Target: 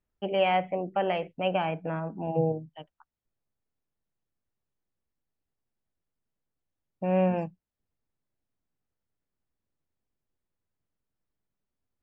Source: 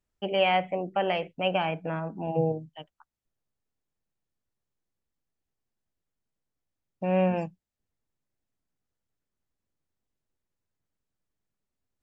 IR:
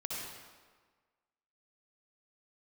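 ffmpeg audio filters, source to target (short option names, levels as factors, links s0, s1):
-af "aemphasis=mode=reproduction:type=75kf"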